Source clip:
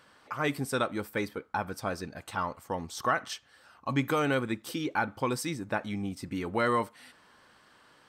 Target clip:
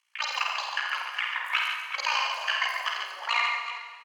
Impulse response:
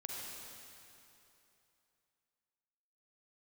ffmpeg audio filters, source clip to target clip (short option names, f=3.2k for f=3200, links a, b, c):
-filter_complex "[0:a]lowpass=7.6k,bandreject=f=1.8k:w=6.3,afwtdn=0.0126,highpass=f=500:w=0.5412,highpass=f=500:w=1.3066,tremolo=f=29:d=0.857,aecho=1:1:103|169|286|744:0.531|0.376|0.501|0.251,asplit=2[a][b];[1:a]atrim=start_sample=2205,adelay=88[c];[b][c]afir=irnorm=-1:irlink=0,volume=-3dB[d];[a][d]amix=inputs=2:normalize=0,asetrate=88200,aresample=44100,volume=5.5dB"